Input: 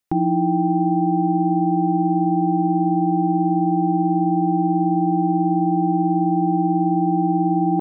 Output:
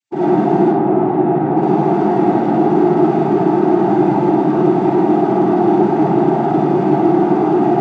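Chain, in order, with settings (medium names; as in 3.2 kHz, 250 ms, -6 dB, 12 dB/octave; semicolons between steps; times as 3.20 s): spectral contrast enhancement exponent 2.8; one-sided clip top -18.5 dBFS, bottom -14.5 dBFS; noise-vocoded speech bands 16; 0.65–1.57 s: distance through air 410 m; algorithmic reverb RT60 0.94 s, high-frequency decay 0.6×, pre-delay 20 ms, DRR -8 dB; trim -1 dB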